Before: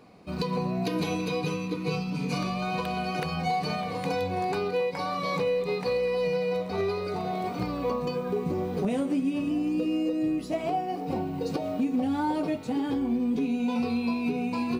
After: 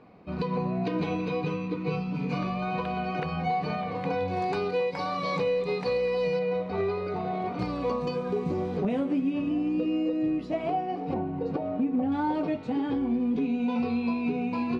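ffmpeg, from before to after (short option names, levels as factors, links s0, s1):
-af "asetnsamples=n=441:p=0,asendcmd='4.28 lowpass f 5600;6.39 lowpass f 2700;7.59 lowpass f 6200;8.77 lowpass f 3100;11.14 lowpass f 1700;12.12 lowpass f 3200',lowpass=2600"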